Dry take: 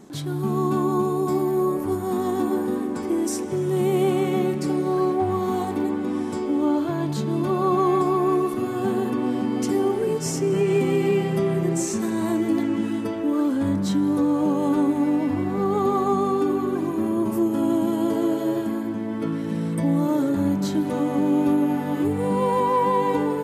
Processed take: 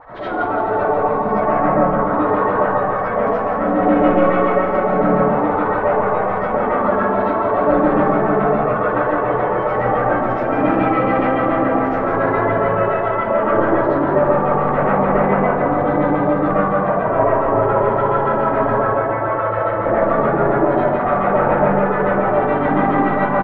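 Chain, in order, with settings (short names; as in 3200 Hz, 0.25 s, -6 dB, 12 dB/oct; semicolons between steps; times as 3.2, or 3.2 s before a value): spectral gate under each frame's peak -15 dB weak; notches 50/100/150 Hz; reverse; upward compressor, threshold -37 dBFS; reverse; sine folder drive 11 dB, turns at -18.5 dBFS; LFO low-pass sine 7.1 Hz 280–1700 Hz; Gaussian blur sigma 2.2 samples; feedback echo 0.169 s, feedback 55%, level -7.5 dB; digital reverb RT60 0.58 s, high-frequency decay 0.35×, pre-delay 35 ms, DRR -9 dB; gain -5 dB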